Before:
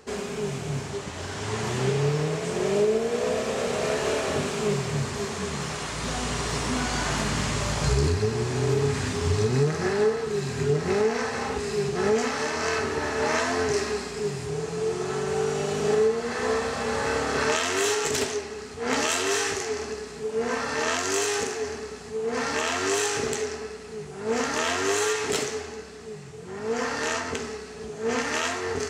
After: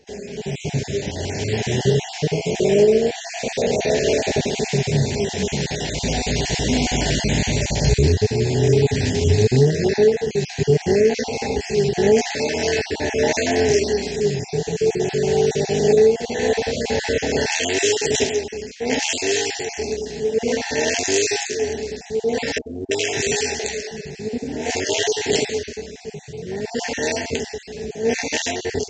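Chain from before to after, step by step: random holes in the spectrogram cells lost 26%; level rider gain up to 11 dB; Butterworth band-stop 1.2 kHz, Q 1.1; 22.58–25.07 s: bands offset in time lows, highs 330 ms, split 430 Hz; trim -1.5 dB; µ-law 128 kbps 16 kHz

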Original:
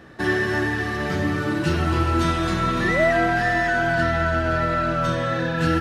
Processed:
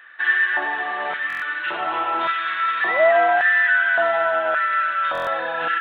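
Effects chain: resampled via 8 kHz; LFO high-pass square 0.88 Hz 770–1600 Hz; buffer glitch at 1.28/5.13 s, samples 1024, times 5

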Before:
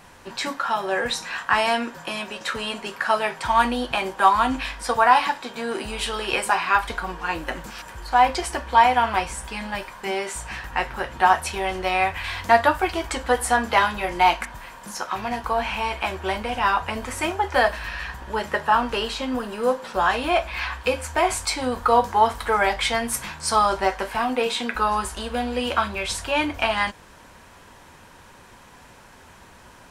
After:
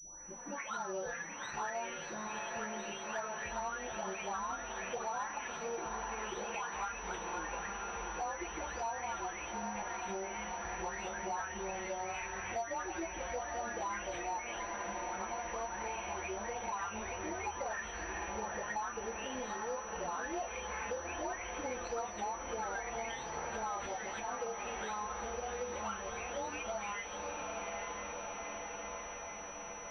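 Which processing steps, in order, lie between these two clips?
delay that grows with frequency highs late, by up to 708 ms; flange 0.14 Hz, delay 3 ms, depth 8.7 ms, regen +45%; in parallel at -8 dB: wavefolder -22.5 dBFS; on the sum: hum notches 60/120/180/240/300 Hz; echo that smears into a reverb 858 ms, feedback 69%, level -8 dB; compression 6:1, threshold -30 dBFS, peak gain reduction 16 dB; class-D stage that switches slowly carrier 5.9 kHz; trim -6.5 dB

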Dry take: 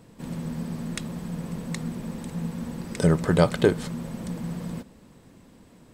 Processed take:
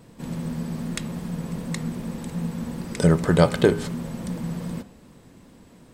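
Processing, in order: vibrato 2.6 Hz 21 cents; de-hum 102.7 Hz, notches 30; trim +2.5 dB

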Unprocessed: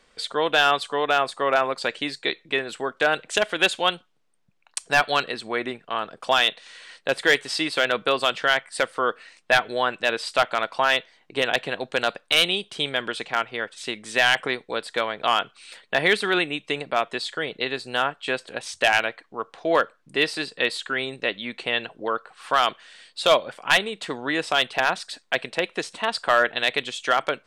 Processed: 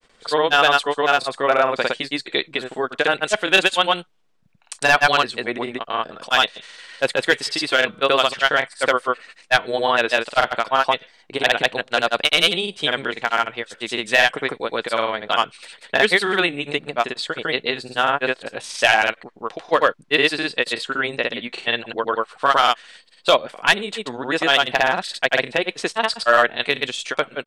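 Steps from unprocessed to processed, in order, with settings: granulator 100 ms, grains 20 per s, spray 100 ms, pitch spread up and down by 0 st; trim +5 dB

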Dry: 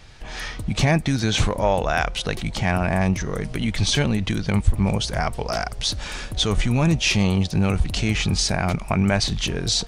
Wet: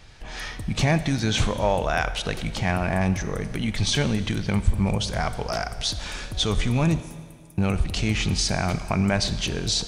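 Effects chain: 7.00–7.58 s: inverse Chebyshev high-pass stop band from 2.1 kHz, stop band 80 dB; Schroeder reverb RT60 1.8 s, combs from 25 ms, DRR 12 dB; trim -2.5 dB

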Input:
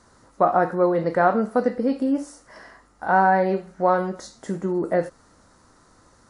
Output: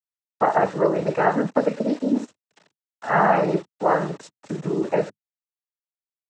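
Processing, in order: small samples zeroed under -36.5 dBFS; noise-vocoded speech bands 12

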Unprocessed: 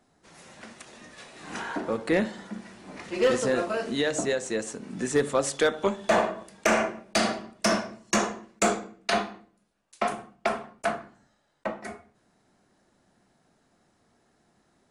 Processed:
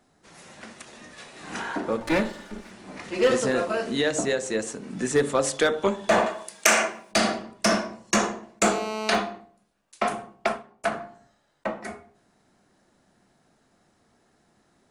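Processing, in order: 2.00–2.71 s: comb filter that takes the minimum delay 3.4 ms; 6.26–7.12 s: tilt EQ +3.5 dB/octave; de-hum 57.98 Hz, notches 19; 8.66–9.15 s: mobile phone buzz -33 dBFS; 10.47–10.92 s: upward expansion 1.5:1, over -42 dBFS; trim +2.5 dB

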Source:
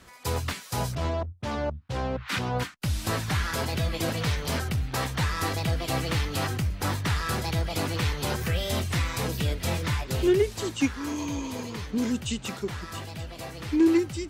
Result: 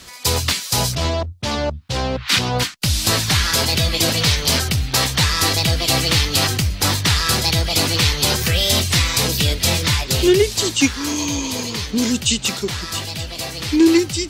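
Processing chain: FFT filter 1.5 kHz 0 dB, 4.5 kHz +12 dB, 10 kHz +8 dB; trim +7.5 dB

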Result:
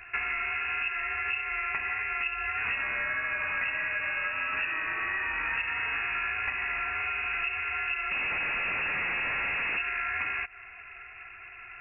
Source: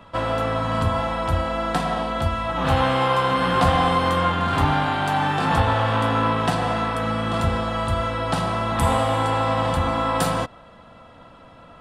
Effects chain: 8.11–9.78 s: Schmitt trigger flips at -26.5 dBFS; frequency inversion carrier 2.7 kHz; compression 6:1, threshold -29 dBFS, peak gain reduction 15 dB

